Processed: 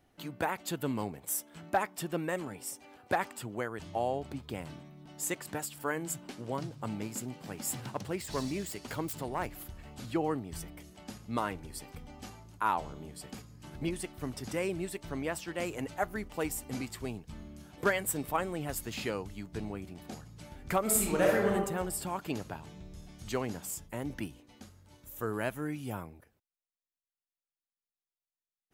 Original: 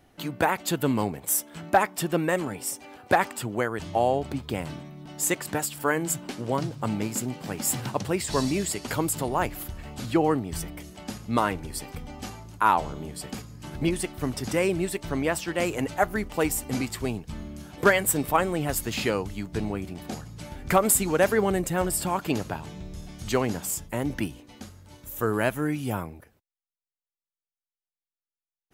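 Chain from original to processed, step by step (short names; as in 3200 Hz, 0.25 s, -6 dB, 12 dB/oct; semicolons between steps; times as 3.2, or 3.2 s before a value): 7.74–9.46 self-modulated delay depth 0.089 ms; 20.82–21.5 reverb throw, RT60 0.9 s, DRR -3 dB; gain -9 dB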